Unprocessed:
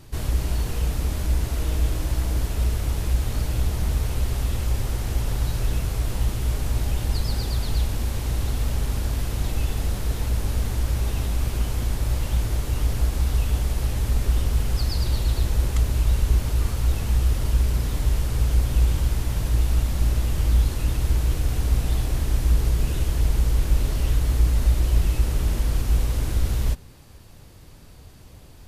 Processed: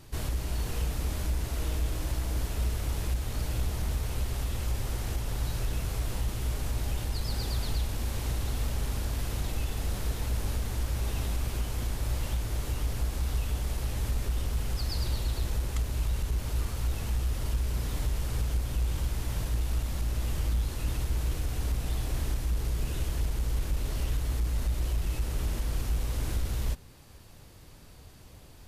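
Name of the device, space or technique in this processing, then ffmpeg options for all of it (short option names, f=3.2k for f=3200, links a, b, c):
soft clipper into limiter: -af "asoftclip=type=tanh:threshold=-10dB,alimiter=limit=-16dB:level=0:latency=1:release=458,lowshelf=f=370:g=-3,volume=-2.5dB"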